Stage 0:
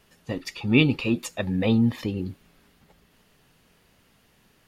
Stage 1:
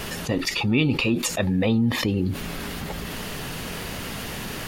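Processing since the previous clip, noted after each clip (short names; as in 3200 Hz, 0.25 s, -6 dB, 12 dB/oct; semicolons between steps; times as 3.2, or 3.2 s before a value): fast leveller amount 70%; gain -4 dB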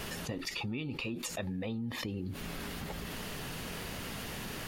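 compressor 6:1, threshold -26 dBFS, peak gain reduction 10.5 dB; gain -8 dB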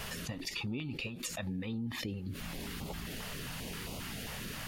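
stepped notch 7.5 Hz 310–1700 Hz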